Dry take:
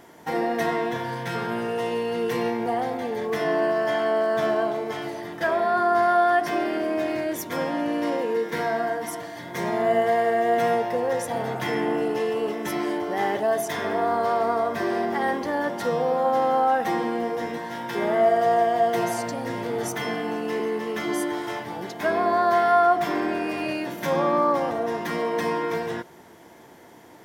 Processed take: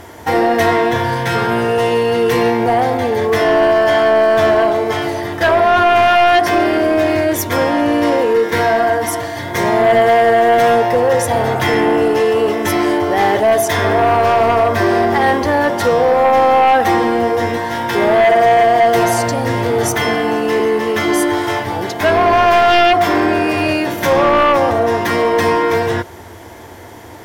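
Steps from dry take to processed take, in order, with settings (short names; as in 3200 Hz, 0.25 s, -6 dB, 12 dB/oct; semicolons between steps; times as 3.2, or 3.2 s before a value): resonant low shelf 120 Hz +8 dB, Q 3; sine folder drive 8 dB, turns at -8.5 dBFS; gain +1.5 dB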